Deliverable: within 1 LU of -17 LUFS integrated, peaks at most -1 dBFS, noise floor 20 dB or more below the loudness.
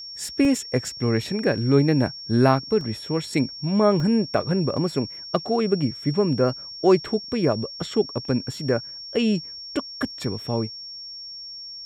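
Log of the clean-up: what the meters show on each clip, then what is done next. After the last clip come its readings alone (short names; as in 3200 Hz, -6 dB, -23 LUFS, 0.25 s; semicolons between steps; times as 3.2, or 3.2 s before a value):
dropouts 4; longest dropout 1.9 ms; steady tone 5500 Hz; tone level -35 dBFS; loudness -23.5 LUFS; peak -6.0 dBFS; loudness target -17.0 LUFS
-> interpolate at 0.45/2.81/4/4.77, 1.9 ms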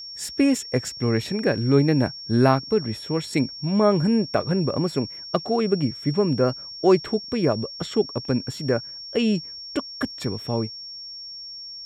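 dropouts 0; steady tone 5500 Hz; tone level -35 dBFS
-> notch 5500 Hz, Q 30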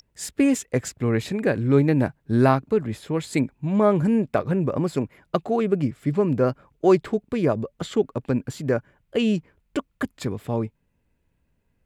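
steady tone none; loudness -23.5 LUFS; peak -5.5 dBFS; loudness target -17.0 LUFS
-> gain +6.5 dB; limiter -1 dBFS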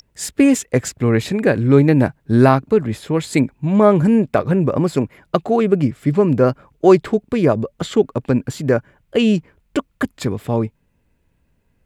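loudness -17.5 LUFS; peak -1.0 dBFS; noise floor -64 dBFS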